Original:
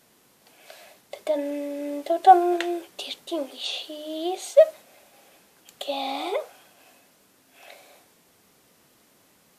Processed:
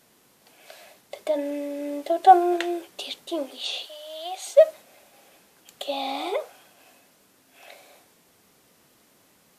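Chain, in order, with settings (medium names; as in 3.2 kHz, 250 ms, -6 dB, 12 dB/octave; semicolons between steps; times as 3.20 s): 3.86–4.47 s: high-pass 630 Hz 24 dB/octave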